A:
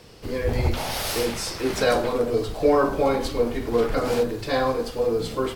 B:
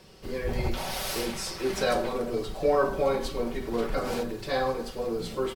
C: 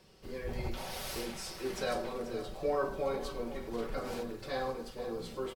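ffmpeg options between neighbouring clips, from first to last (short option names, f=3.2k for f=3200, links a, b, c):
-af "aecho=1:1:5.3:0.49,volume=-5.5dB"
-af "aecho=1:1:486:0.224,volume=-8.5dB"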